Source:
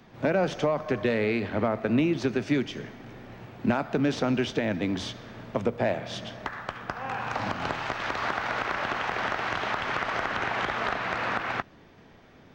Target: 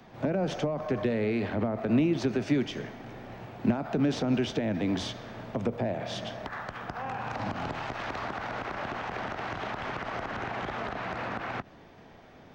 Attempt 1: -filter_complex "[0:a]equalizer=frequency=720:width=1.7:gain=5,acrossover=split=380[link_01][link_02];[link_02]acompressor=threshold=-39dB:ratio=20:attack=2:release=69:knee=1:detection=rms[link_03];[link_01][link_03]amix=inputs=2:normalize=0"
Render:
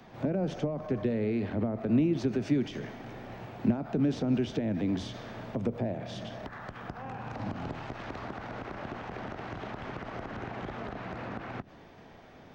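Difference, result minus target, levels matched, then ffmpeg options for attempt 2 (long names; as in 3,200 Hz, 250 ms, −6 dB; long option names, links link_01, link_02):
downward compressor: peak gain reduction +7.5 dB
-filter_complex "[0:a]equalizer=frequency=720:width=1.7:gain=5,acrossover=split=380[link_01][link_02];[link_02]acompressor=threshold=-31dB:ratio=20:attack=2:release=69:knee=1:detection=rms[link_03];[link_01][link_03]amix=inputs=2:normalize=0"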